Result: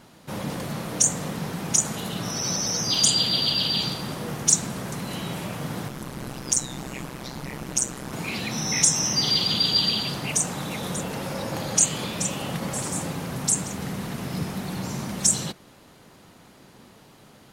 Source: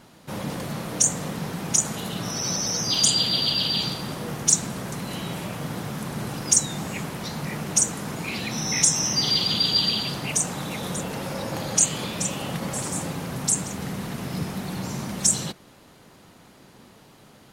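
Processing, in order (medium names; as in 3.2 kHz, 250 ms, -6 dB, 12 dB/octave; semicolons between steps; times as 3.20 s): 5.88–8.13 s: AM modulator 130 Hz, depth 85%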